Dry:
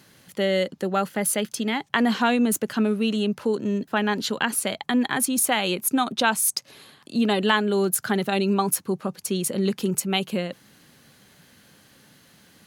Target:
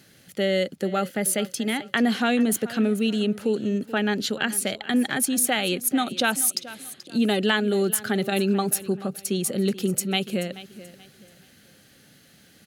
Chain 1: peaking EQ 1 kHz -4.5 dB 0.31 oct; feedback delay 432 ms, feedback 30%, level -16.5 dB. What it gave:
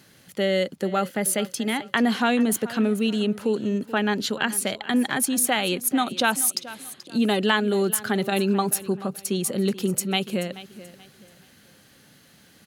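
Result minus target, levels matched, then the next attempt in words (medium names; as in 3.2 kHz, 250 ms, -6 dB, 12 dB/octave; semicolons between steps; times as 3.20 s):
1 kHz band +2.5 dB
peaking EQ 1 kHz -15 dB 0.31 oct; feedback delay 432 ms, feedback 30%, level -16.5 dB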